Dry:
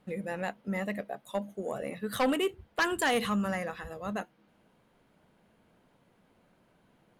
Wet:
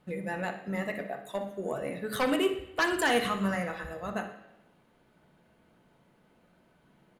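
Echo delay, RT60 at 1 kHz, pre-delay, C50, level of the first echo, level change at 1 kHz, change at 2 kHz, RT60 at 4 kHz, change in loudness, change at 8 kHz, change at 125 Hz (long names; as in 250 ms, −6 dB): 61 ms, 0.85 s, 3 ms, 8.5 dB, −13.0 dB, +1.0 dB, +2.0 dB, 0.85 s, +1.5 dB, +0.5 dB, +1.0 dB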